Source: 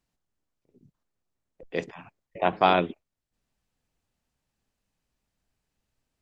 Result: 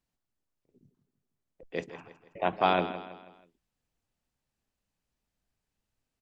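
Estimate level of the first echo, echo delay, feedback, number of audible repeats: -12.5 dB, 162 ms, 43%, 4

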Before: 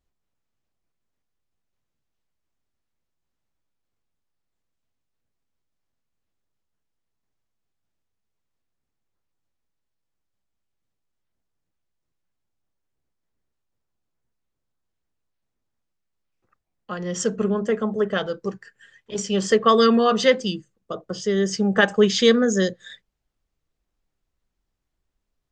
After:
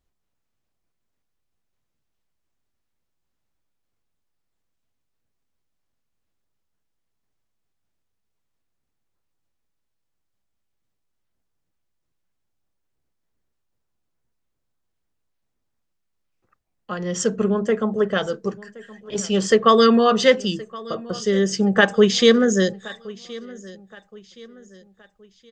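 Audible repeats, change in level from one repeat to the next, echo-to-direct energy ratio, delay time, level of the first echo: 2, -8.0 dB, -20.0 dB, 1071 ms, -20.5 dB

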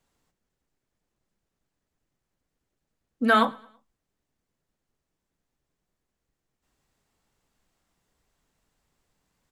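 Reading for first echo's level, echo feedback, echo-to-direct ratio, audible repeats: -24.0 dB, 41%, -23.0 dB, 2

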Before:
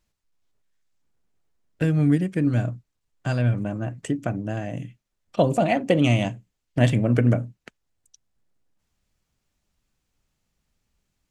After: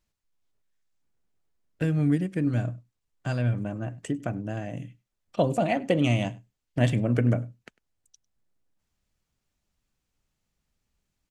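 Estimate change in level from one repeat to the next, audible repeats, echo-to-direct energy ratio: no regular repeats, 1, -24.0 dB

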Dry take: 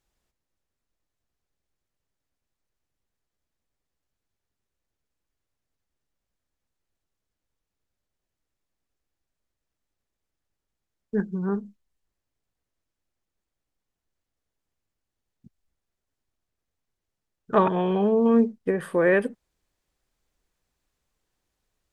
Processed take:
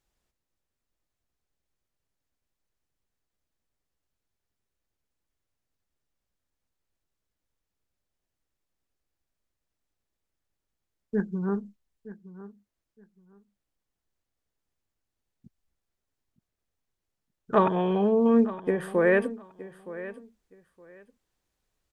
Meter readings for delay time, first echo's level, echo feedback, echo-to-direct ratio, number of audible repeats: 918 ms, -16.0 dB, 20%, -16.0 dB, 2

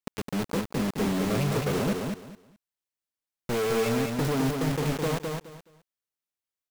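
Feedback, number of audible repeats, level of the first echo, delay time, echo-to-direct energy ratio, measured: 22%, 3, -4.0 dB, 211 ms, -4.0 dB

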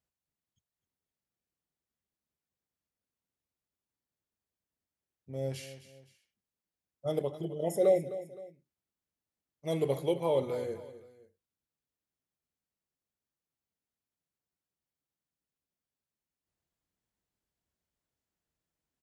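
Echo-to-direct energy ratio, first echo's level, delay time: -14.0 dB, -14.5 dB, 258 ms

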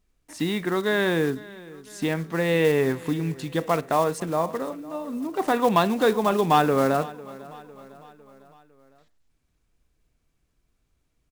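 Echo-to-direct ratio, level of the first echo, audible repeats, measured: -18.5 dB, -20.0 dB, 3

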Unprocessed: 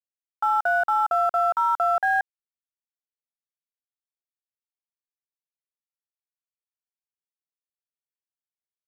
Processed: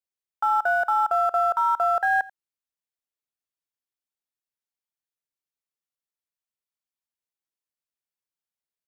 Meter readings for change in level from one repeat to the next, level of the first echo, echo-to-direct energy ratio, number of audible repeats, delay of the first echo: no regular repeats, -20.5 dB, -20.5 dB, 1, 87 ms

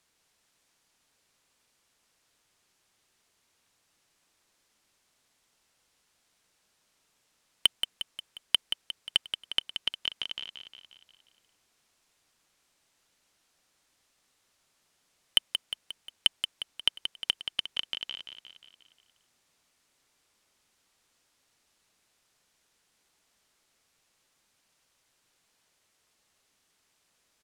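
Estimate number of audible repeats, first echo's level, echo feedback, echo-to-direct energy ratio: 6, -8.0 dB, 54%, -6.5 dB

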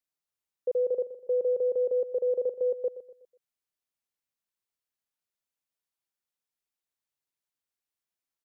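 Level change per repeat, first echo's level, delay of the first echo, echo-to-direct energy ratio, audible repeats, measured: -8.0 dB, -13.5 dB, 123 ms, -13.0 dB, 3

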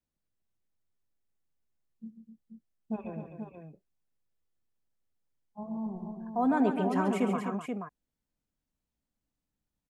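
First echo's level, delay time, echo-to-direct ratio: -18.0 dB, 73 ms, -3.0 dB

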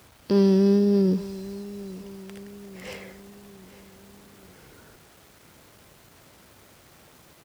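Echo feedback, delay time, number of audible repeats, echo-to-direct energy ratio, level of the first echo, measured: 50%, 849 ms, 3, -16.5 dB, -17.5 dB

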